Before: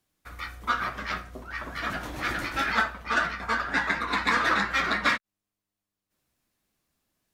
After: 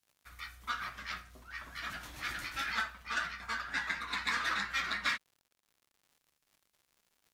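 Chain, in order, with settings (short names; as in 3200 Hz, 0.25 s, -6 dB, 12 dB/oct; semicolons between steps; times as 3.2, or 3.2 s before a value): passive tone stack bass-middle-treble 5-5-5; crackle 130/s -57 dBFS; gain +2 dB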